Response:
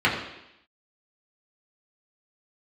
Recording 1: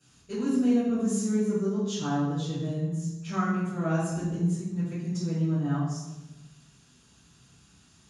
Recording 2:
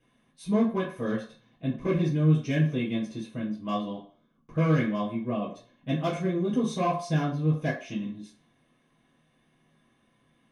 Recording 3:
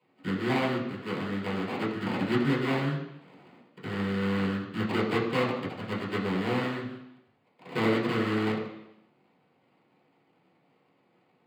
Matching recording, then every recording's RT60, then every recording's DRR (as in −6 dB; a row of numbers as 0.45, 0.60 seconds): 3; 1.1, 0.45, 0.85 seconds; −16.0, −9.5, −6.0 decibels